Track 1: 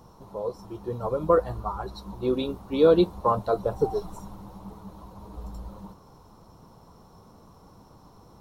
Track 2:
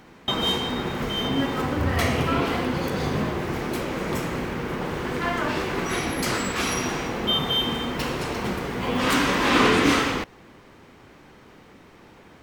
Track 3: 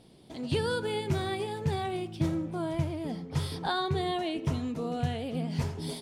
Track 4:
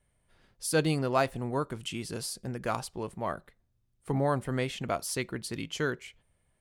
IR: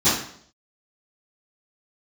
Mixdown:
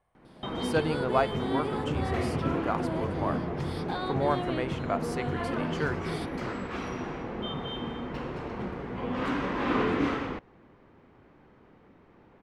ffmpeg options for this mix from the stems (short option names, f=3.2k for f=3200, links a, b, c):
-filter_complex "[0:a]asplit=3[a][b][c];[a]bandpass=f=730:t=q:w=8,volume=0dB[d];[b]bandpass=f=1.09k:t=q:w=8,volume=-6dB[e];[c]bandpass=f=2.44k:t=q:w=8,volume=-9dB[f];[d][e][f]amix=inputs=3:normalize=0,volume=-14dB[g];[1:a]lowpass=f=1.3k:p=1,adelay=150,volume=-6.5dB[h];[2:a]acompressor=threshold=-33dB:ratio=6,adelay=250,volume=2dB[i];[3:a]equalizer=f=910:w=0.47:g=9,volume=-6.5dB[j];[g][h][i][j]amix=inputs=4:normalize=0,highshelf=f=6k:g=-9.5"